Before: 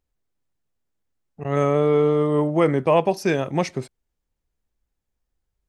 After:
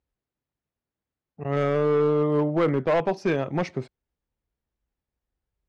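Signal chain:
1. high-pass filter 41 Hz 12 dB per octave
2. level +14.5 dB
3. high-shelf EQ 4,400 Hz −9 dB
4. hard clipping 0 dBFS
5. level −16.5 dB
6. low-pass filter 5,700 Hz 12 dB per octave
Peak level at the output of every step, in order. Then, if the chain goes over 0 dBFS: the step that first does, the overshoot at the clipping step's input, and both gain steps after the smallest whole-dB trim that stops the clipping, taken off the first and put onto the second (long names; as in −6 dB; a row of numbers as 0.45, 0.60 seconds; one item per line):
−4.5, +10.0, +9.5, 0.0, −16.5, −16.0 dBFS
step 2, 9.5 dB
step 2 +4.5 dB, step 5 −6.5 dB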